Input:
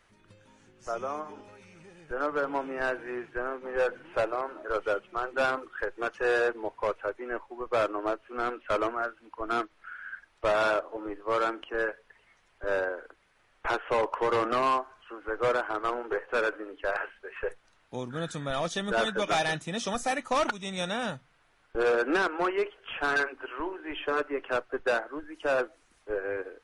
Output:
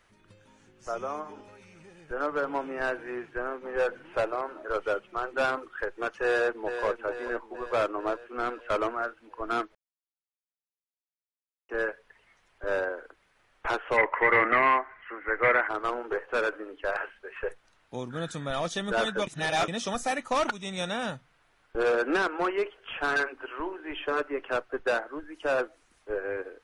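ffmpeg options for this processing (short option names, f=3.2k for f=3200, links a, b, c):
-filter_complex "[0:a]asplit=2[a][b];[b]afade=t=in:st=6.22:d=0.01,afade=t=out:st=6.84:d=0.01,aecho=0:1:440|880|1320|1760|2200|2640|3080|3520:0.375837|0.225502|0.135301|0.0811809|0.0487085|0.0292251|0.0175351|0.010521[c];[a][c]amix=inputs=2:normalize=0,asplit=3[d][e][f];[d]afade=t=out:st=13.96:d=0.02[g];[e]lowpass=f=2k:t=q:w=12,afade=t=in:st=13.96:d=0.02,afade=t=out:st=15.67:d=0.02[h];[f]afade=t=in:st=15.67:d=0.02[i];[g][h][i]amix=inputs=3:normalize=0,asplit=5[j][k][l][m][n];[j]atrim=end=9.75,asetpts=PTS-STARTPTS,afade=t=out:st=9.746:d=0.004:c=hsin[o];[k]atrim=start=9.75:end=11.69,asetpts=PTS-STARTPTS,volume=0[p];[l]atrim=start=11.69:end=19.272,asetpts=PTS-STARTPTS,afade=t=in:d=0.004:c=hsin[q];[m]atrim=start=19.268:end=19.682,asetpts=PTS-STARTPTS,areverse[r];[n]atrim=start=19.678[s];[o][p][q]concat=n=3:v=0:a=1[t];[t][r]acrossfade=d=0.004:c1=hsin:c2=hsin[u];[u][s]acrossfade=d=0.004:c1=hsin:c2=hsin"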